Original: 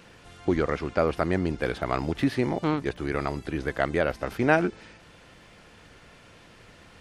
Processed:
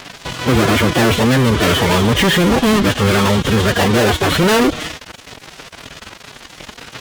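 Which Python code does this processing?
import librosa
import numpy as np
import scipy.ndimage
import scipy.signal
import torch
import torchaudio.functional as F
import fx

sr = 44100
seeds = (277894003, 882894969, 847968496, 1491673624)

y = fx.freq_compress(x, sr, knee_hz=2900.0, ratio=4.0)
y = fx.fuzz(y, sr, gain_db=44.0, gate_db=-46.0)
y = fx.pitch_keep_formants(y, sr, semitones=6.0)
y = y * 10.0 ** (2.5 / 20.0)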